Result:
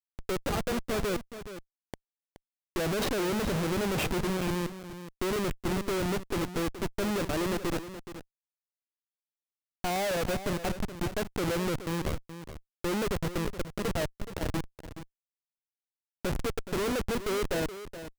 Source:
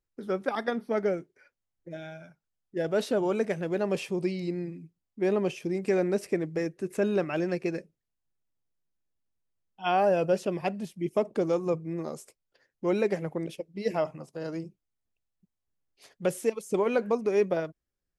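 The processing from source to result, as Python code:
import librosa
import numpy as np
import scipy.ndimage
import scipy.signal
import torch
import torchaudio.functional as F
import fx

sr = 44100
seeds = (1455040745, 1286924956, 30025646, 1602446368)

y = fx.transient(x, sr, attack_db=-2, sustain_db=6, at=(2.8, 4.21))
y = fx.schmitt(y, sr, flips_db=-31.0)
y = y + 10.0 ** (-12.0 / 20.0) * np.pad(y, (int(423 * sr / 1000.0), 0))[:len(y)]
y = F.gain(torch.from_numpy(y), 1.5).numpy()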